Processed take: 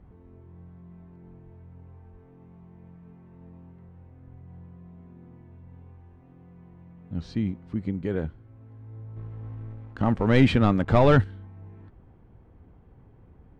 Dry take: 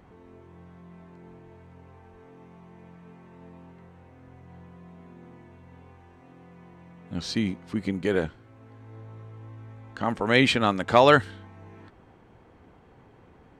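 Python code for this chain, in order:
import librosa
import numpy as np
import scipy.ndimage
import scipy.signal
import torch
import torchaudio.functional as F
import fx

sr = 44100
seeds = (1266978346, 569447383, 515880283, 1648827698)

y = fx.leveller(x, sr, passes=2, at=(9.16, 11.24))
y = fx.riaa(y, sr, side='playback')
y = F.gain(torch.from_numpy(y), -8.5).numpy()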